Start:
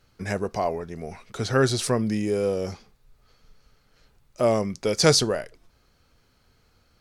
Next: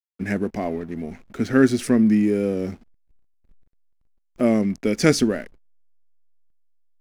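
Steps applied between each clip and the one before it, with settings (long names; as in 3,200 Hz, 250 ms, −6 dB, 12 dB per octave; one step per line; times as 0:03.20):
octave-band graphic EQ 125/250/500/1,000/2,000/4,000/8,000 Hz −9/+12/−5/−11/+6/−11/−6 dB
slack as between gear wheels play −44 dBFS
level +3.5 dB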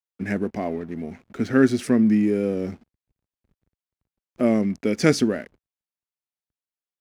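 high-pass filter 69 Hz
high-shelf EQ 6,000 Hz −5 dB
level −1 dB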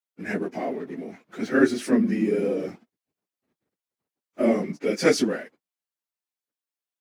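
random phases in long frames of 50 ms
high-pass filter 270 Hz 12 dB per octave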